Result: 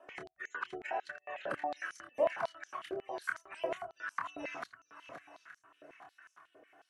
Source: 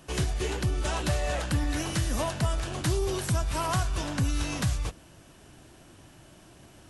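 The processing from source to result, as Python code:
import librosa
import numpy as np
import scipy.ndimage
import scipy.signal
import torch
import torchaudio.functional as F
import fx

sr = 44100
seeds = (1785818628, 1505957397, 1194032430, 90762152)

p1 = fx.spec_gate(x, sr, threshold_db=-25, keep='strong')
p2 = fx.high_shelf_res(p1, sr, hz=2600.0, db=-13.5, q=1.5)
p3 = fx.env_flanger(p2, sr, rest_ms=3.1, full_db=-23.5)
p4 = fx.echo_swing(p3, sr, ms=875, ratio=1.5, feedback_pct=36, wet_db=-11.0)
p5 = fx.rotary(p4, sr, hz=1.1)
p6 = fx.doubler(p5, sr, ms=27.0, db=-4.5)
p7 = p6 + fx.echo_single(p6, sr, ms=950, db=-22.0, dry=0)
p8 = fx.filter_held_highpass(p7, sr, hz=11.0, low_hz=550.0, high_hz=6000.0)
y = F.gain(torch.from_numpy(p8), -2.0).numpy()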